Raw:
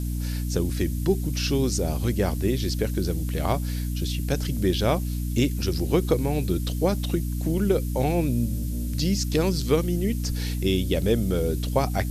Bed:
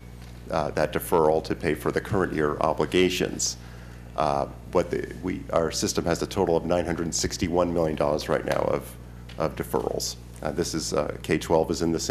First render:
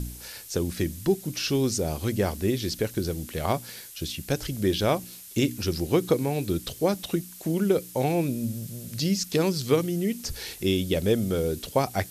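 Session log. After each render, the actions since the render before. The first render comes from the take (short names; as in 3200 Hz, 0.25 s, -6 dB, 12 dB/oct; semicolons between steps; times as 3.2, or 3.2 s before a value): de-hum 60 Hz, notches 5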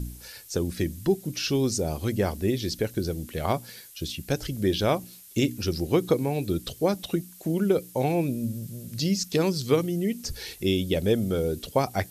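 denoiser 6 dB, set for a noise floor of -44 dBFS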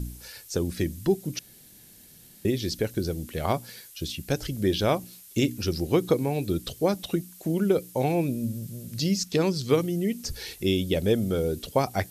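1.39–2.45 room tone; 9.24–9.7 high shelf 11000 Hz -9 dB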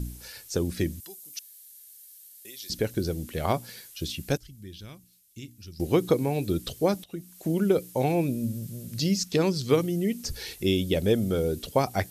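1–2.7 differentiator; 4.37–5.8 passive tone stack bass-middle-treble 6-0-2; 7.04–7.47 fade in, from -23.5 dB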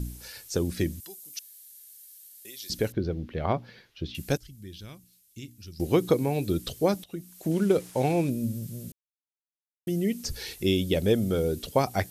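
2.92–4.15 air absorption 290 m; 7.51–8.3 CVSD 64 kbps; 8.92–9.87 mute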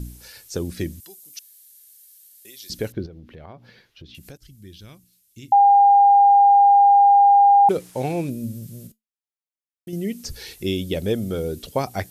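3.06–4.42 compressor 4:1, threshold -40 dBFS; 5.52–7.69 bleep 805 Hz -9.5 dBFS; 8.87–9.93 resonator 220 Hz, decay 0.17 s, mix 50%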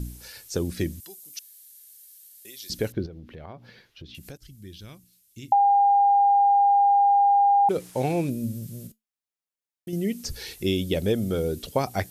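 compressor, threshold -17 dBFS, peak gain reduction 5.5 dB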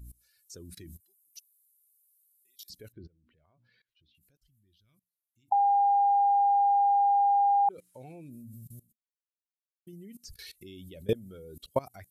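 per-bin expansion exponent 1.5; level quantiser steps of 23 dB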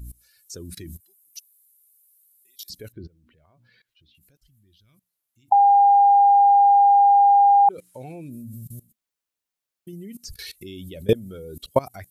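gain +9 dB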